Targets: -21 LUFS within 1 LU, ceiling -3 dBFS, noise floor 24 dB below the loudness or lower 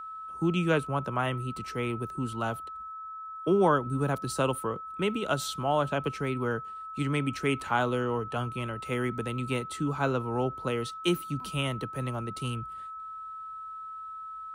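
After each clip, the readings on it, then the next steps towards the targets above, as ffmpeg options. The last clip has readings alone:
steady tone 1.3 kHz; tone level -38 dBFS; loudness -31.0 LUFS; peak level -12.5 dBFS; loudness target -21.0 LUFS
-> -af "bandreject=f=1300:w=30"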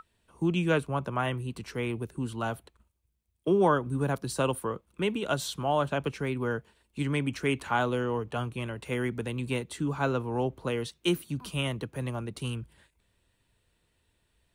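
steady tone not found; loudness -30.5 LUFS; peak level -13.0 dBFS; loudness target -21.0 LUFS
-> -af "volume=2.99"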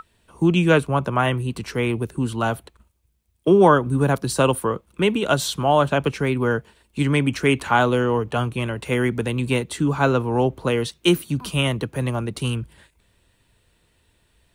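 loudness -21.0 LUFS; peak level -3.5 dBFS; noise floor -65 dBFS

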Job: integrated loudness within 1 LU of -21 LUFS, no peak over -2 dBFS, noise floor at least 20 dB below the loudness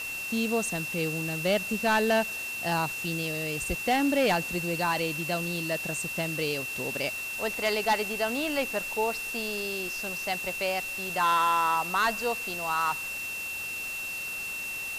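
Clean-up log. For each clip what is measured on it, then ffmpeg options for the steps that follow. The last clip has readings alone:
steady tone 2.7 kHz; tone level -33 dBFS; noise floor -35 dBFS; noise floor target -48 dBFS; loudness -28.0 LUFS; peak level -16.0 dBFS; loudness target -21.0 LUFS
-> -af "bandreject=f=2700:w=30"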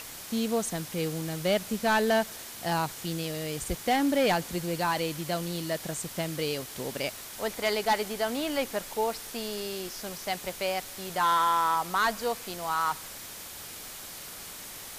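steady tone not found; noise floor -43 dBFS; noise floor target -50 dBFS
-> -af "afftdn=nr=7:nf=-43"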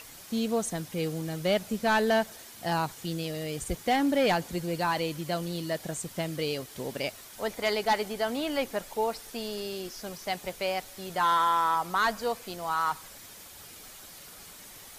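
noise floor -48 dBFS; noise floor target -50 dBFS
-> -af "afftdn=nr=6:nf=-48"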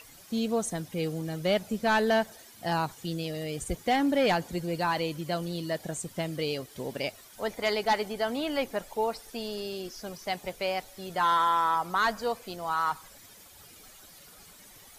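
noise floor -52 dBFS; loudness -30.0 LUFS; peak level -17.0 dBFS; loudness target -21.0 LUFS
-> -af "volume=2.82"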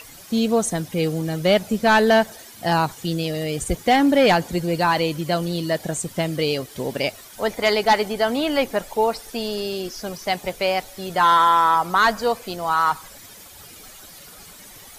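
loudness -21.0 LUFS; peak level -8.0 dBFS; noise floor -43 dBFS

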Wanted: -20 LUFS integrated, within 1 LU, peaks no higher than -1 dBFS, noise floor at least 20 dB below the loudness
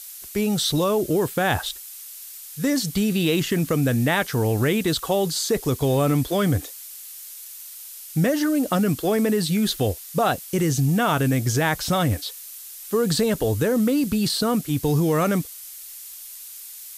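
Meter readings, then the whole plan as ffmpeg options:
noise floor -40 dBFS; noise floor target -42 dBFS; loudness -22.0 LUFS; peak level -9.0 dBFS; loudness target -20.0 LUFS
-> -af "afftdn=nr=6:nf=-40"
-af "volume=1.26"

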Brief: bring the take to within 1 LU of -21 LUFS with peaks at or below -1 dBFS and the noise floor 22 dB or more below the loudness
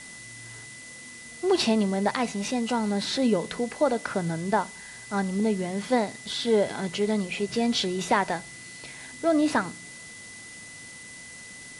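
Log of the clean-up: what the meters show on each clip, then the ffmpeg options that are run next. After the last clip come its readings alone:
steady tone 2 kHz; tone level -44 dBFS; noise floor -44 dBFS; noise floor target -49 dBFS; loudness -26.5 LUFS; peak level -10.0 dBFS; loudness target -21.0 LUFS
-> -af "bandreject=f=2000:w=30"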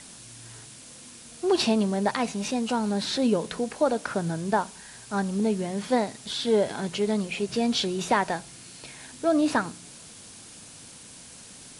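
steady tone not found; noise floor -47 dBFS; noise floor target -49 dBFS
-> -af "afftdn=nr=6:nf=-47"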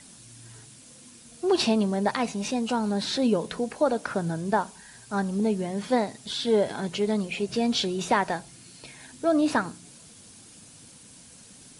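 noise floor -50 dBFS; loudness -26.5 LUFS; peak level -10.0 dBFS; loudness target -21.0 LUFS
-> -af "volume=1.88"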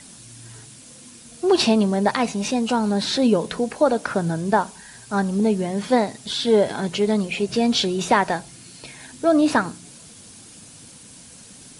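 loudness -21.0 LUFS; peak level -4.5 dBFS; noise floor -45 dBFS

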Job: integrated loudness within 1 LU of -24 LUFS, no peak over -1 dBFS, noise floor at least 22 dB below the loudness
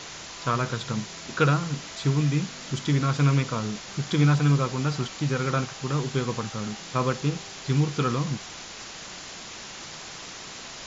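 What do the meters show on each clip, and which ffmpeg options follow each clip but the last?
noise floor -41 dBFS; noise floor target -48 dBFS; loudness -26.0 LUFS; peak level -9.5 dBFS; loudness target -24.0 LUFS
-> -af "afftdn=nr=7:nf=-41"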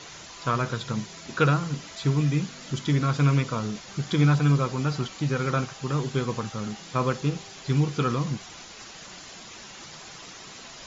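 noise floor -44 dBFS; noise floor target -49 dBFS
-> -af "afftdn=nr=6:nf=-44"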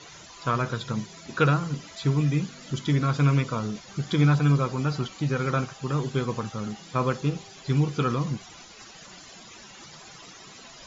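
noise floor -47 dBFS; noise floor target -49 dBFS
-> -af "afftdn=nr=6:nf=-47"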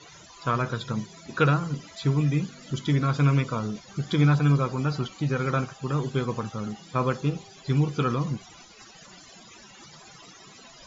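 noise floor -50 dBFS; loudness -26.5 LUFS; peak level -9.5 dBFS; loudness target -24.0 LUFS
-> -af "volume=1.33"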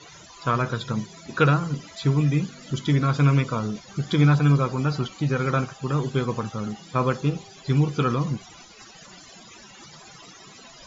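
loudness -24.0 LUFS; peak level -7.0 dBFS; noise floor -47 dBFS

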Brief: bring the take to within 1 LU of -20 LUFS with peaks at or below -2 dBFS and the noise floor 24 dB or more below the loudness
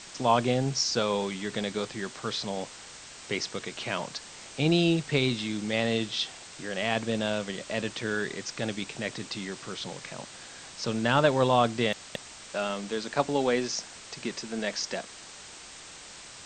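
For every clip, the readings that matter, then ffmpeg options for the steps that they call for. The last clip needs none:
noise floor -46 dBFS; noise floor target -54 dBFS; loudness -29.5 LUFS; peak level -8.5 dBFS; loudness target -20.0 LUFS
-> -af "afftdn=nr=8:nf=-46"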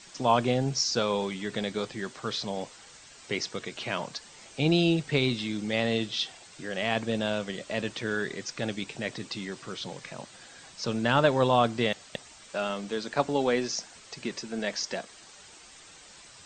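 noise floor -51 dBFS; noise floor target -54 dBFS
-> -af "afftdn=nr=6:nf=-51"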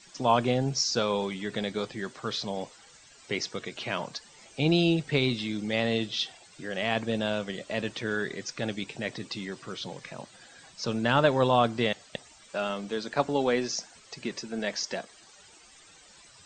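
noise floor -55 dBFS; loudness -29.5 LUFS; peak level -8.5 dBFS; loudness target -20.0 LUFS
-> -af "volume=2.99,alimiter=limit=0.794:level=0:latency=1"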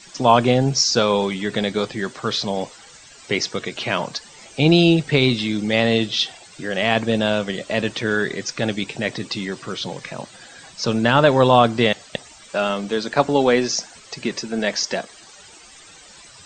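loudness -20.0 LUFS; peak level -2.0 dBFS; noise floor -45 dBFS

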